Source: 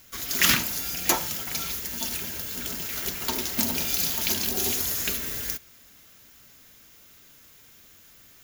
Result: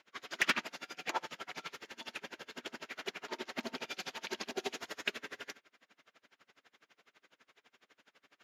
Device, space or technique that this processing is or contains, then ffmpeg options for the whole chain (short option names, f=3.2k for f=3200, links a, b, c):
helicopter radio: -af "highpass=380,lowpass=2.6k,aeval=exprs='val(0)*pow(10,-29*(0.5-0.5*cos(2*PI*12*n/s))/20)':c=same,asoftclip=type=hard:threshold=-22dB,volume=1.5dB"